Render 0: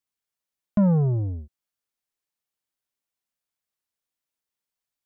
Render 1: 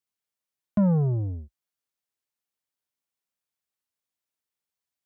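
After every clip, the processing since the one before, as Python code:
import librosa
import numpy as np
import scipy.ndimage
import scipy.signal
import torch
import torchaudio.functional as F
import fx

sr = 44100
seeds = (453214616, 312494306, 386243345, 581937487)

y = scipy.signal.sosfilt(scipy.signal.butter(4, 53.0, 'highpass', fs=sr, output='sos'), x)
y = F.gain(torch.from_numpy(y), -2.0).numpy()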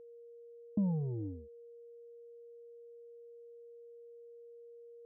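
y = fx.formant_cascade(x, sr, vowel='u')
y = y + 10.0 ** (-51.0 / 20.0) * np.sin(2.0 * np.pi * 470.0 * np.arange(len(y)) / sr)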